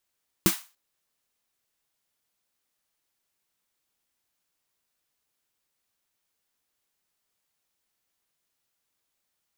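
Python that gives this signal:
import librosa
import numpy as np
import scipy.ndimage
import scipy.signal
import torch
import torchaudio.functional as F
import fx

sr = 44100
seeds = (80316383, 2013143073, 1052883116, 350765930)

y = fx.drum_snare(sr, seeds[0], length_s=0.29, hz=190.0, second_hz=330.0, noise_db=-4, noise_from_hz=810.0, decay_s=0.1, noise_decay_s=0.32)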